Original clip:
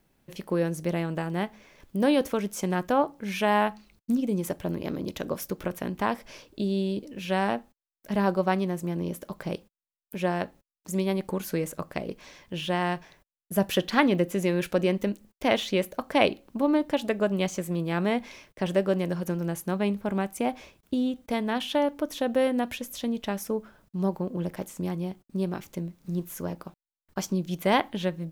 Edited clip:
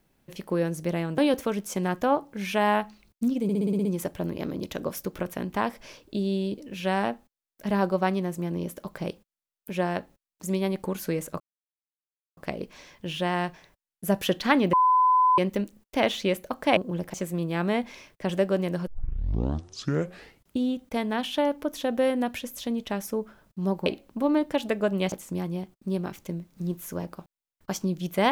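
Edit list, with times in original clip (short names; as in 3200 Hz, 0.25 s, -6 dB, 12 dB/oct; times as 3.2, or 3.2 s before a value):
1.18–2.05 cut
4.3 stutter 0.06 s, 8 plays
11.85 insert silence 0.97 s
14.21–14.86 bleep 1010 Hz -16.5 dBFS
16.25–17.51 swap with 24.23–24.6
19.24 tape start 1.75 s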